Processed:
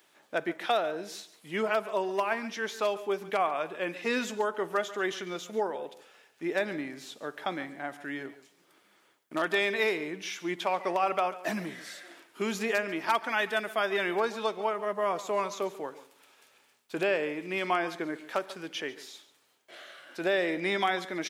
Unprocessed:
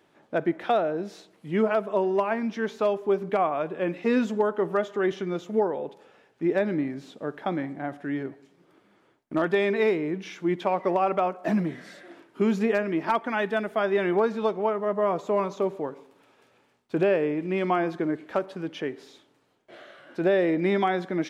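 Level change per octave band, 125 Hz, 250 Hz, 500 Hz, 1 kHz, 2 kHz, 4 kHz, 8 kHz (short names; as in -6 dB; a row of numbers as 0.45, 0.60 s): -12.0 dB, -9.5 dB, -6.0 dB, -2.5 dB, +1.5 dB, +5.0 dB, n/a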